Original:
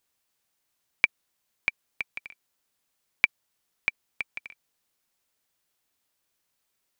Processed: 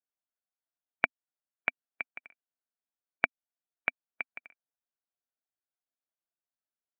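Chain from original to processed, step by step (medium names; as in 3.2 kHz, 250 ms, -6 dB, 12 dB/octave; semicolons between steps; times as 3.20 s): expander on every frequency bin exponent 1.5; compression, threshold -28 dBFS, peak gain reduction 12 dB; cabinet simulation 150–2400 Hz, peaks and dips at 260 Hz +5 dB, 680 Hz +9 dB, 1.5 kHz +7 dB; trim +5 dB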